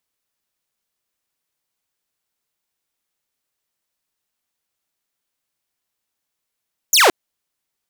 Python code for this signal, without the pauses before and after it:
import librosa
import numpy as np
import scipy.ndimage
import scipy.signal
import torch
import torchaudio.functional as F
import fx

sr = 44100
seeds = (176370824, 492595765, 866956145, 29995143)

y = fx.laser_zap(sr, level_db=-6.5, start_hz=7500.0, end_hz=310.0, length_s=0.17, wave='saw')